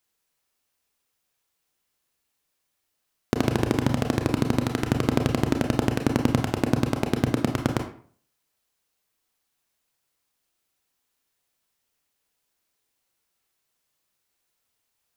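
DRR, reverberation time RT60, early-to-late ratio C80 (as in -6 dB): 4.0 dB, 0.50 s, 12.5 dB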